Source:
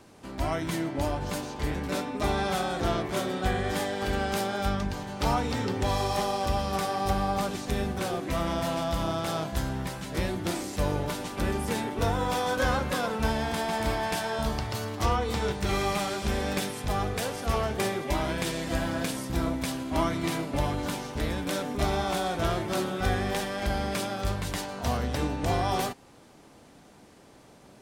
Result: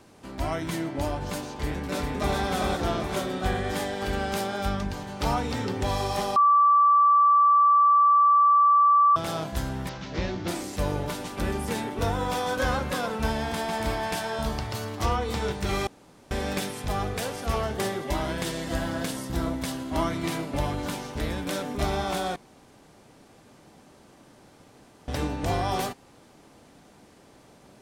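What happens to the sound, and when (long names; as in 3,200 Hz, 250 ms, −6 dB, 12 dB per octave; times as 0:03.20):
0:01.59–0:02.36: delay throw 400 ms, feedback 55%, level −2.5 dB
0:06.36–0:09.16: beep over 1,160 Hz −15 dBFS
0:09.89–0:10.48: variable-slope delta modulation 32 kbit/s
0:15.87–0:16.31: fill with room tone
0:17.61–0:20.09: notch filter 2,400 Hz
0:22.36–0:25.08: fill with room tone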